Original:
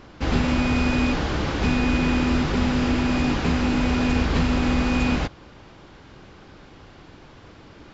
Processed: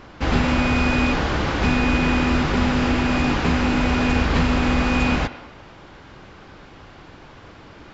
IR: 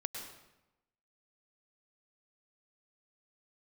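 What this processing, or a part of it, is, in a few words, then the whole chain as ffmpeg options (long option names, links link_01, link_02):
filtered reverb send: -filter_complex "[0:a]asplit=2[link_01][link_02];[link_02]highpass=500,lowpass=3300[link_03];[1:a]atrim=start_sample=2205[link_04];[link_03][link_04]afir=irnorm=-1:irlink=0,volume=-6.5dB[link_05];[link_01][link_05]amix=inputs=2:normalize=0,volume=2dB"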